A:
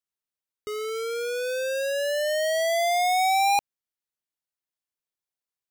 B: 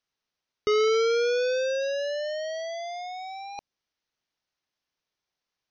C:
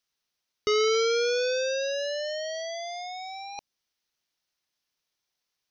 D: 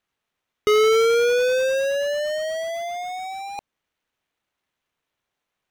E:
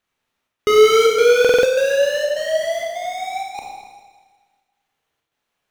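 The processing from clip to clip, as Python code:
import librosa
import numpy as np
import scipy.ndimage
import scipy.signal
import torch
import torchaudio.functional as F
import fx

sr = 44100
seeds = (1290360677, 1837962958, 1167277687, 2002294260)

y1 = scipy.signal.sosfilt(scipy.signal.butter(16, 6300.0, 'lowpass', fs=sr, output='sos'), x)
y1 = fx.dynamic_eq(y1, sr, hz=1800.0, q=0.72, threshold_db=-34.0, ratio=4.0, max_db=-4)
y1 = fx.over_compress(y1, sr, threshold_db=-31.0, ratio=-0.5)
y1 = F.gain(torch.from_numpy(y1), 4.5).numpy()
y2 = fx.high_shelf(y1, sr, hz=3200.0, db=9.5)
y2 = F.gain(torch.from_numpy(y2), -2.0).numpy()
y3 = scipy.signal.medfilt(y2, 9)
y3 = F.gain(torch.from_numpy(y3), 7.5).numpy()
y4 = fx.step_gate(y3, sr, bpm=127, pattern='xxxx.xxxx.', floor_db=-60.0, edge_ms=4.5)
y4 = fx.rev_schroeder(y4, sr, rt60_s=1.5, comb_ms=27, drr_db=-1.0)
y4 = fx.buffer_glitch(y4, sr, at_s=(1.4,), block=2048, repeats=4)
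y4 = F.gain(torch.from_numpy(y4), 2.0).numpy()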